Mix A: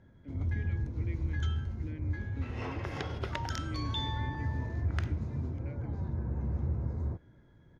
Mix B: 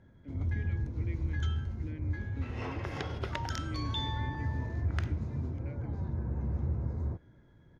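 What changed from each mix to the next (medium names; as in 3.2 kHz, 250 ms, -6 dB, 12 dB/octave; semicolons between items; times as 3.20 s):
no change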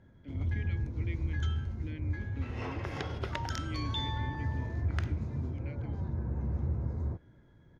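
speech: add peaking EQ 3.6 kHz +11.5 dB 1.3 oct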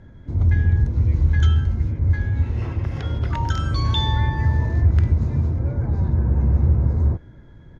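speech: add peaking EQ 3.6 kHz -11.5 dB 1.3 oct; first sound +11.5 dB; master: add bass shelf 65 Hz +10.5 dB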